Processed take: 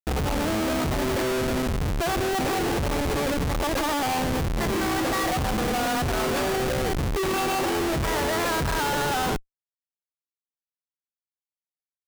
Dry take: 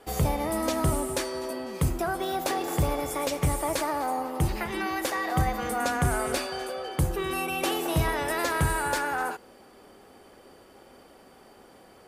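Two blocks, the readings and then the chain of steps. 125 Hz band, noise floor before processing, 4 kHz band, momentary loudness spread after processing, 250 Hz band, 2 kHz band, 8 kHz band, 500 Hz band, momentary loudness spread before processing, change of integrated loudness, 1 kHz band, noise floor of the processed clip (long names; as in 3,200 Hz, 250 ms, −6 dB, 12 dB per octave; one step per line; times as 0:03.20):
+0.5 dB, −54 dBFS, +5.5 dB, 2 LU, +5.0 dB, +3.0 dB, +1.5 dB, +4.0 dB, 5 LU, +3.0 dB, +2.5 dB, below −85 dBFS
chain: gate on every frequency bin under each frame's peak −15 dB strong
comparator with hysteresis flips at −34 dBFS
level +5 dB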